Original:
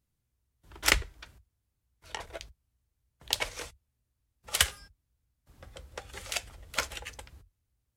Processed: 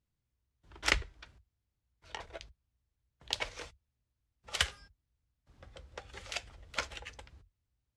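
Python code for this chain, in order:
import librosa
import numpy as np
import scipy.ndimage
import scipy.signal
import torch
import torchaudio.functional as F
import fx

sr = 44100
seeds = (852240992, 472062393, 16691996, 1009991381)

y = scipy.signal.sosfilt(scipy.signal.butter(2, 5800.0, 'lowpass', fs=sr, output='sos'), x)
y = y * librosa.db_to_amplitude(-4.0)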